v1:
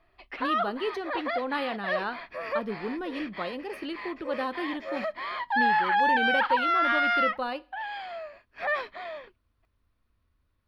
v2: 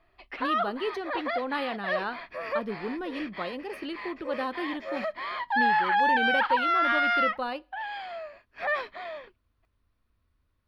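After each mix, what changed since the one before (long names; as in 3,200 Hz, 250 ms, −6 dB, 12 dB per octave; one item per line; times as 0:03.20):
speech: send −6.0 dB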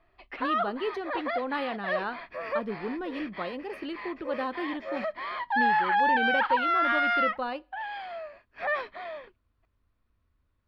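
master: add high-shelf EQ 4,800 Hz −9 dB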